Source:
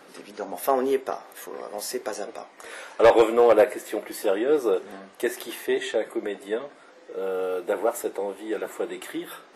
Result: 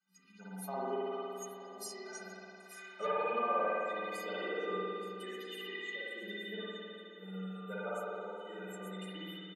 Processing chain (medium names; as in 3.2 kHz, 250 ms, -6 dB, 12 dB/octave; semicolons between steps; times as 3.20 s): expander on every frequency bin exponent 2; high-pass 43 Hz; inharmonic resonator 180 Hz, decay 0.41 s, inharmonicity 0.03; compression 6:1, threshold -48 dBFS, peak gain reduction 18.5 dB; peaking EQ 350 Hz -5 dB 0.49 oct; delay 875 ms -15.5 dB; spring tank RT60 2.6 s, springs 53 ms, chirp 30 ms, DRR -8 dB; low-pass that closes with the level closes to 2.6 kHz, closed at -40.5 dBFS; comb 4.1 ms, depth 71%; trim +10.5 dB